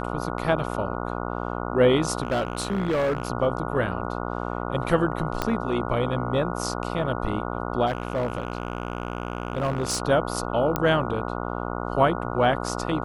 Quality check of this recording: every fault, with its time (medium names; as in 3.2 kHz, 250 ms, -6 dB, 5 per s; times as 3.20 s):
buzz 60 Hz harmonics 24 -30 dBFS
2.23–3.30 s: clipped -20 dBFS
5.42 s: pop -10 dBFS
7.86–10.02 s: clipped -20.5 dBFS
10.76 s: pop -9 dBFS